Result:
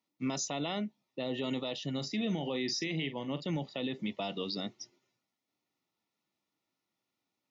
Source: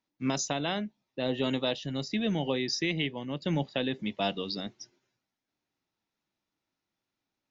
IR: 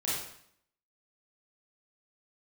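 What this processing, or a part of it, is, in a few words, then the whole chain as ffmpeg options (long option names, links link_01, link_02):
PA system with an anti-feedback notch: -filter_complex "[0:a]highpass=120,asuperstop=centerf=1600:order=12:qfactor=6.5,alimiter=level_in=2dB:limit=-24dB:level=0:latency=1:release=36,volume=-2dB,asettb=1/sr,asplit=3[link_01][link_02][link_03];[link_01]atrim=end=1.944[link_04];[link_02]atrim=start=1.94:end=3.45,asetpts=PTS-STARTPTS,afade=type=in:duration=0.004:curve=qsin,afade=type=out:start_time=1.506:duration=0.004:curve=qsin,asplit=2[link_05][link_06];[link_06]adelay=43,volume=-11.5dB[link_07];[link_05][link_07]amix=inputs=2:normalize=0,atrim=end_sample=66591[link_08];[link_03]atrim=start=3.446[link_09];[link_04][link_08]acrossfade=duration=0.004:curve1=hsin:curve2=qsin[link_10];[link_10][link_09]acrossfade=duration=0.004:curve1=qsin:curve2=hsin"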